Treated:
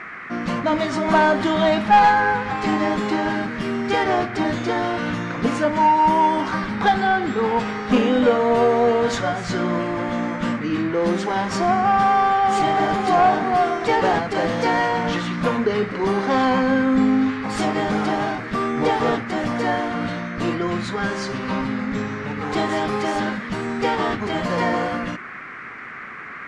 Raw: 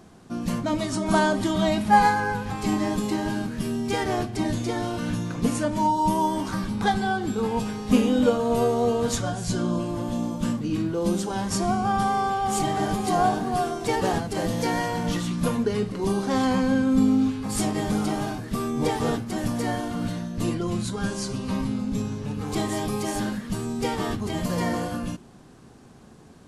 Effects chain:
high-frequency loss of the air 87 metres
mid-hump overdrive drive 17 dB, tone 2,400 Hz, clips at −4.5 dBFS
noise in a band 1,100–2,200 Hz −36 dBFS

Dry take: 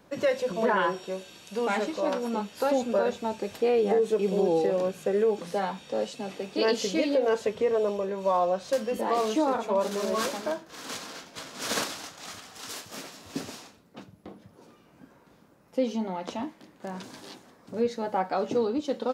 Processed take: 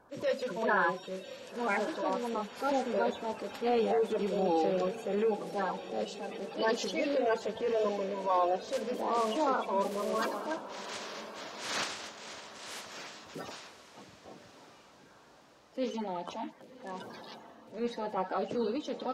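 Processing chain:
spectral magnitudes quantised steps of 30 dB
high-shelf EQ 5,700 Hz −10 dB
transient designer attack −7 dB, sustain +1 dB
low-shelf EQ 430 Hz −7 dB
feedback delay with all-pass diffusion 1,068 ms, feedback 48%, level −14.5 dB

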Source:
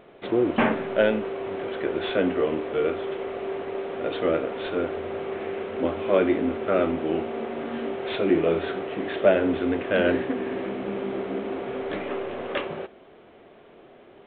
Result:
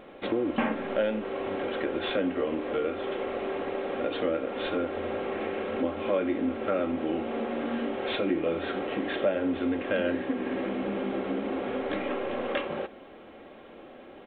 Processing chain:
comb filter 3.7 ms, depth 46%
downward compressor 2.5 to 1, threshold −31 dBFS, peak gain reduction 13 dB
level +2.5 dB

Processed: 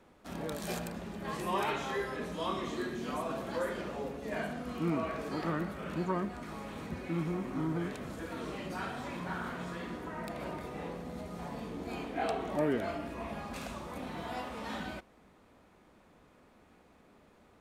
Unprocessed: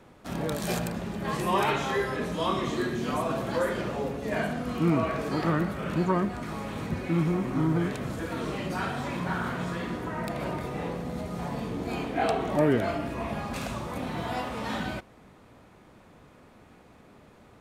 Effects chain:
parametric band 120 Hz −9 dB 0.52 octaves
level −7 dB

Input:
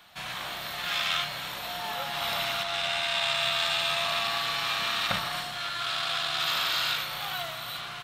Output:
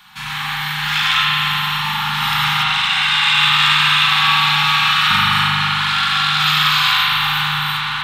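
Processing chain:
spring reverb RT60 3.9 s, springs 40 ms, chirp 50 ms, DRR −7 dB
brick-wall band-stop 250–760 Hz
level +8 dB

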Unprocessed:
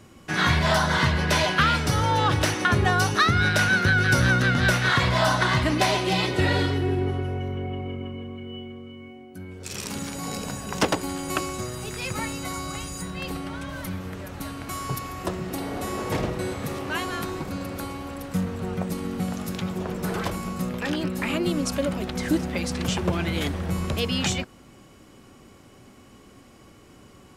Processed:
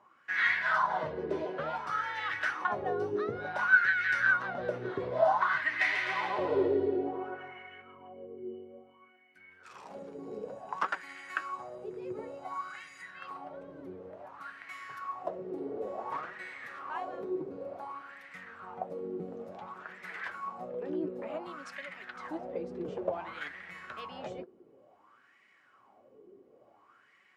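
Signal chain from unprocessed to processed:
LFO wah 0.56 Hz 390–2,000 Hz, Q 6.2
0:05.59–0:07.82: bouncing-ball delay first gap 140 ms, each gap 0.8×, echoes 5
flanger 1.1 Hz, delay 4.7 ms, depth 5.5 ms, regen +57%
level +7.5 dB

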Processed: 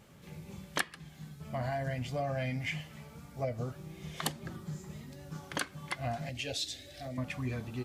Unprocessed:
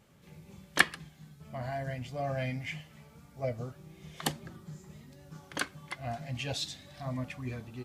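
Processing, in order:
downward compressor 5 to 1, threshold −36 dBFS, peak gain reduction 18 dB
0:06.29–0:07.18: phaser with its sweep stopped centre 420 Hz, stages 4
level +5 dB

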